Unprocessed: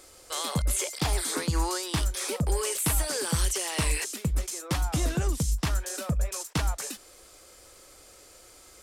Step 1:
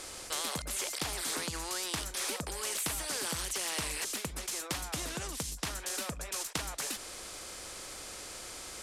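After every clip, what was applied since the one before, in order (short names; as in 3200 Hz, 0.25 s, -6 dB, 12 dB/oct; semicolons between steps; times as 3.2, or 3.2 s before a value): LPF 10000 Hz 12 dB/oct; compressor, threshold -29 dBFS, peak gain reduction 8 dB; spectral compressor 2:1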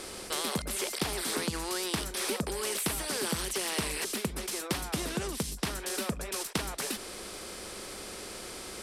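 bell 6800 Hz -6 dB 0.36 oct; small resonant body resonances 210/380 Hz, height 8 dB, ringing for 30 ms; gain +2.5 dB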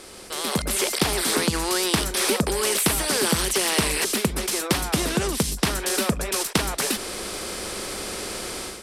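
AGC gain up to 12 dB; gain -1.5 dB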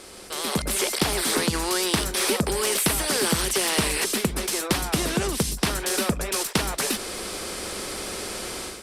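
in parallel at -9 dB: one-sided clip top -19 dBFS; on the sum: gain -3.5 dB; Opus 48 kbps 48000 Hz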